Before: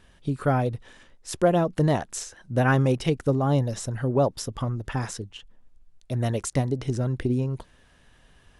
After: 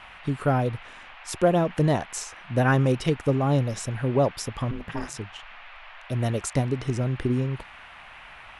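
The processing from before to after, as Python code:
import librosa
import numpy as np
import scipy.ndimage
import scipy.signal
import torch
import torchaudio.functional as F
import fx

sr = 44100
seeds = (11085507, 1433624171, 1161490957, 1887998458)

y = fx.dmg_noise_band(x, sr, seeds[0], low_hz=660.0, high_hz=2800.0, level_db=-46.0)
y = fx.ring_mod(y, sr, carrier_hz=140.0, at=(4.71, 5.17))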